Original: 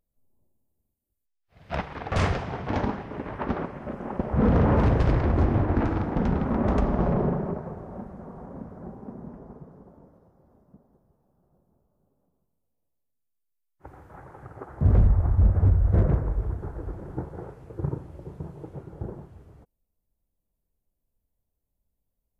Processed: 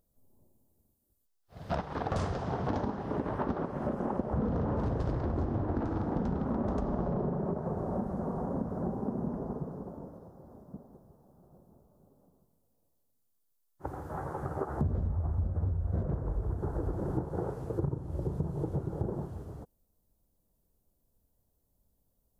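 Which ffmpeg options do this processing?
-filter_complex "[0:a]asettb=1/sr,asplit=3[a][b][c];[a]atrim=end=14.034[d];[b]atrim=start=14.03:end=16.03,asetpts=PTS-STARTPTS,afade=t=in:d=0.004:c=qsin,afade=t=out:st=1.996:d=0.004:c=qsin,asplit=2[e][f];[f]adelay=13,volume=-5dB[g];[e][g]amix=inputs=2:normalize=0,atrim=end_sample=88200[h];[c]atrim=start=16.026[i];[d][h]acrossfade=d=0.004:c1=hsin:c2=qsin[j];[j][i]acrossfade=d=0.004:c1=qsin:c2=hsin,asettb=1/sr,asplit=3[k][l][m];[k]atrim=end=17.864[n];[l]atrim=start=17.86:end=18.91,asetpts=PTS-STARTPTS,afade=t=in:d=0.004:c=qsin,afade=t=out:st=1.046:d=0.004:c=qsin,lowshelf=f=120:g=8.5[o];[m]atrim=start=18.906[p];[n][o]acrossfade=d=0.004:c1=hsin:c2=qsin[q];[q][p]acrossfade=d=0.004:c1=qsin:c2=hsin,lowshelf=f=64:g=-7,acompressor=threshold=-37dB:ratio=12,equalizer=f=2.3k:t=o:w=1:g=-12.5,volume=9dB"

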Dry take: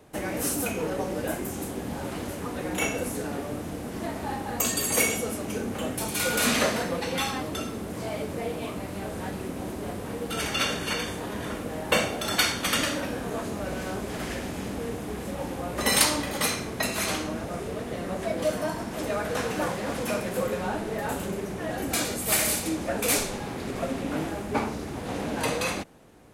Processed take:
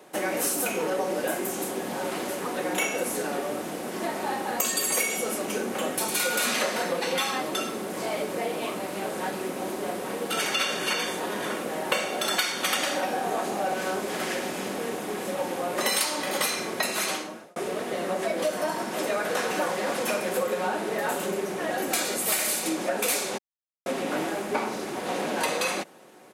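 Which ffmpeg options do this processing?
-filter_complex "[0:a]asettb=1/sr,asplit=3[a][b][c];[a]atrim=end=12.694[d];[b]atrim=start=12.69:end=13.74,asetpts=PTS-STARTPTS,afade=t=in:d=0.004:c=qsin,afade=t=out:st=1.046:d=0.004:c=qsin,equalizer=f=770:w=7.7:g=12.5[e];[c]atrim=start=13.736[f];[d][e]acrossfade=d=0.004:c1=hsin:c2=qsin[g];[g][f]acrossfade=d=0.004:c1=qsin:c2=hsin,asplit=4[h][i][j][k];[h]atrim=end=17.56,asetpts=PTS-STARTPTS,afade=t=out:st=16.84:d=0.72[l];[i]atrim=start=17.56:end=23.38,asetpts=PTS-STARTPTS,afade=t=in:d=0.004:c=hsin,afade=t=out:st=5.816:d=0.004:c=hsin[m];[j]atrim=start=23.38:end=23.86,asetpts=PTS-STARTPTS,volume=0[n];[k]atrim=start=23.86,asetpts=PTS-STARTPTS,afade=t=in:d=0.004:c=hsin[o];[l][m][n][o]concat=n=4:v=0:a=1,highpass=320,aecho=1:1:5.4:0.32,acompressor=threshold=-28dB:ratio=5,volume=5dB"

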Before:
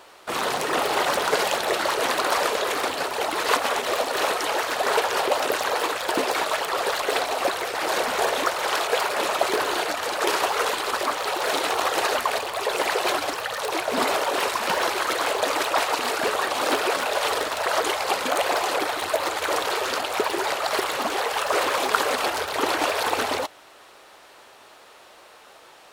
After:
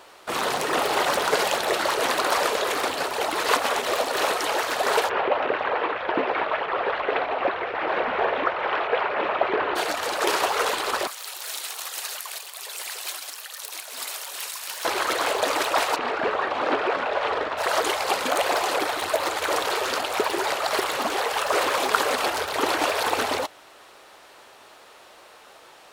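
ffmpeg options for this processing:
-filter_complex "[0:a]asplit=3[a][b][c];[a]afade=t=out:st=5.08:d=0.02[d];[b]lowpass=f=2.7k:w=0.5412,lowpass=f=2.7k:w=1.3066,afade=t=in:st=5.08:d=0.02,afade=t=out:st=9.75:d=0.02[e];[c]afade=t=in:st=9.75:d=0.02[f];[d][e][f]amix=inputs=3:normalize=0,asettb=1/sr,asplit=3[g][h][i];[g]atrim=end=11.074[j];[h]atrim=start=11.07:end=14.85,asetpts=PTS-STARTPTS,afade=t=in:d=0.004:c=qsin,afade=t=out:st=3.776:d=0.004:c=qsin,aderivative[k];[i]atrim=start=14.846[l];[j][k]acrossfade=d=0.004:c1=hsin:c2=qsin[m];[m][l]acrossfade=d=0.004:c1=qsin:c2=hsin,asplit=3[n][o][p];[n]afade=t=out:st=15.95:d=0.02[q];[o]lowpass=2.4k,afade=t=in:st=15.95:d=0.02,afade=t=out:st=17.57:d=0.02[r];[p]afade=t=in:st=17.57:d=0.02[s];[q][r][s]amix=inputs=3:normalize=0"

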